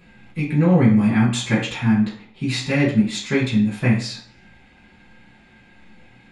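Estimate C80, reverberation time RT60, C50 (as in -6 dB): 10.5 dB, 0.55 s, 6.5 dB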